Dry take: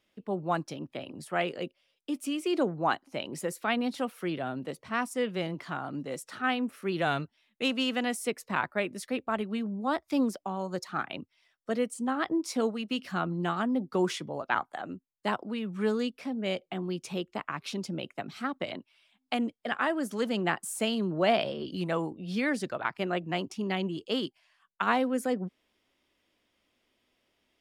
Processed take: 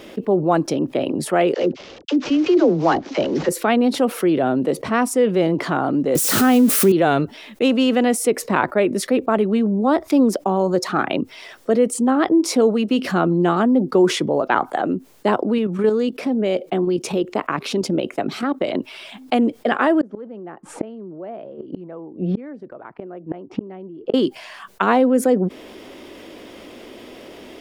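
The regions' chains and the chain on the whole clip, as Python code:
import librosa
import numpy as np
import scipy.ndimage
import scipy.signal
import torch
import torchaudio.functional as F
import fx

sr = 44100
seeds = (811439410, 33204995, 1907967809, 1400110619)

y = fx.chain(x, sr, fx.cvsd(bps=32000),
    fx.dispersion(late='lows', ms=45.0, hz=610.0), at=(1.54, 3.49))
y = fx.chain(y, sr, fx.crossing_spikes(level_db=-25.5),
    fx.peak_eq(hz=110.0, db=13.0, octaves=2.6),
    fx.pre_swell(db_per_s=29.0), at=(6.15, 6.92))
y = fx.chain(y, sr, fx.low_shelf(hz=150.0, db=-5.5),
    fx.level_steps(step_db=9), at=(15.58, 18.75))
y = fx.chain(y, sr, fx.lowpass(hz=1500.0, slope=12),
    fx.gate_flip(shuts_db=-28.0, range_db=-37), at=(20.01, 24.14))
y = fx.peak_eq(y, sr, hz=390.0, db=12.5, octaves=2.1)
y = fx.env_flatten(y, sr, amount_pct=50)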